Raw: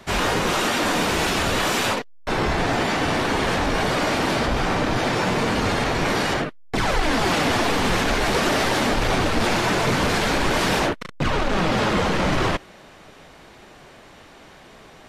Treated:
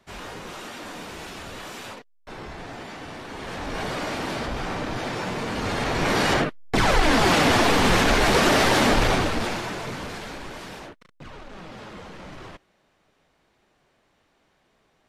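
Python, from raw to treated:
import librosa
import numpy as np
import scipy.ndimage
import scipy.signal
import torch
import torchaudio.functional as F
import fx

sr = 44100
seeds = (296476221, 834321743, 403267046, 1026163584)

y = fx.gain(x, sr, db=fx.line((3.26, -16.0), (3.81, -7.5), (5.47, -7.5), (6.33, 2.0), (9.0, 2.0), (9.7, -10.5), (10.95, -20.0)))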